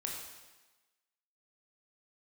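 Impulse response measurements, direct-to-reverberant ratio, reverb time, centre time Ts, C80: -1.5 dB, 1.2 s, 57 ms, 4.0 dB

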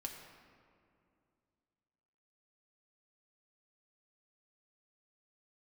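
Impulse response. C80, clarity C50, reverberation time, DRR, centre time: 5.5 dB, 4.5 dB, 2.5 s, 0.5 dB, 52 ms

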